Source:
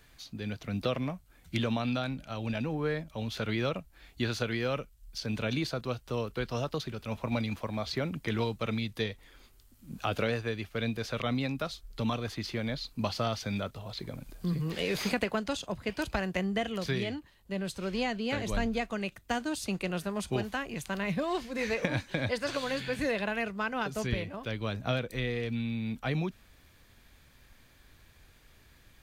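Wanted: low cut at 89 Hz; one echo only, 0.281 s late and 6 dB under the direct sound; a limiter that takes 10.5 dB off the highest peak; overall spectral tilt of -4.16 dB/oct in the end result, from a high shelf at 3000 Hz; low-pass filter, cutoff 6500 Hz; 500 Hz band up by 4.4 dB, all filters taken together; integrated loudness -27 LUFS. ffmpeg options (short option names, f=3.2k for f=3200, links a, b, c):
-af "highpass=89,lowpass=6.5k,equalizer=f=500:t=o:g=5,highshelf=f=3k:g=5.5,alimiter=limit=-22.5dB:level=0:latency=1,aecho=1:1:281:0.501,volume=5.5dB"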